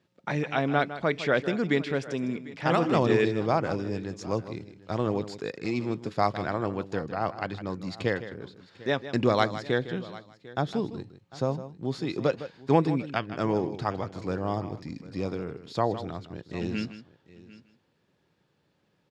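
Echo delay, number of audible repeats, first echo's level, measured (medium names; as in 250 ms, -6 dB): 157 ms, 3, -13.0 dB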